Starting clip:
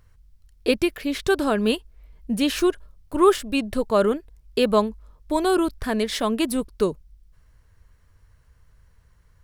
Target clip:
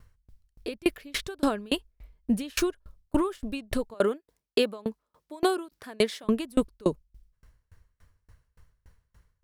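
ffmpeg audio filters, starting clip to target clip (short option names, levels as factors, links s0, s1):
-filter_complex "[0:a]asettb=1/sr,asplit=3[s0][s1][s2];[s0]atrim=end=3.944[s3];[s1]atrim=start=3.94:end=6.24,asetpts=PTS-STARTPTS,afade=t=in:d=0.004:c=qsin,afade=t=out:st=2.296:d=0.004:c=qsin,highpass=230[s4];[s2]atrim=start=6.236[s5];[s3][s4]acrossfade=d=0.004:c1=hsin:c2=qsin[s6];[s6][s5]acrossfade=d=0.004:c1=qsin:c2=hsin,alimiter=level_in=4.47:limit=0.891:release=50:level=0:latency=1,aeval=exprs='val(0)*pow(10,-32*if(lt(mod(3.5*n/s,1),2*abs(3.5)/1000),1-mod(3.5*n/s,1)/(2*abs(3.5)/1000),(mod(3.5*n/s,1)-2*abs(3.5)/1000)/(1-2*abs(3.5)/1000))/20)':c=same,volume=0.376"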